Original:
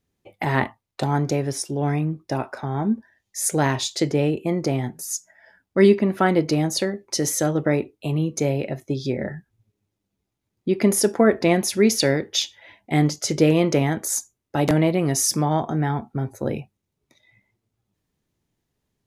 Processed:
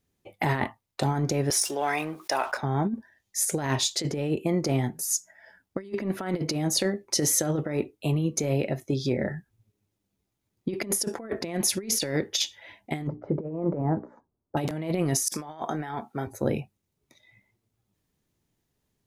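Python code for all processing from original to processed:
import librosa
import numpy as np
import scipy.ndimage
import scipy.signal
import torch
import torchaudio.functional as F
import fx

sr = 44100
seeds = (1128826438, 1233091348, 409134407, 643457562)

y = fx.chain(x, sr, fx.highpass(hz=790.0, slope=12),
    fx.leveller(passes=1),
    fx.env_flatten(amount_pct=50), at=(1.5, 2.57))
y = fx.chain(y, sr, fx.lowpass(hz=1100.0, slope=24),
    fx.hum_notches(base_hz=60, count=7), at=(13.07, 14.57))
y = fx.chain(y, sr, fx.highpass(hz=680.0, slope=6),
    fx.over_compress(threshold_db=-32.0, ratio=-0.5), at=(15.28, 16.27))
y = fx.high_shelf(y, sr, hz=7500.0, db=4.5)
y = fx.over_compress(y, sr, threshold_db=-22.0, ratio=-0.5)
y = F.gain(torch.from_numpy(y), -3.5).numpy()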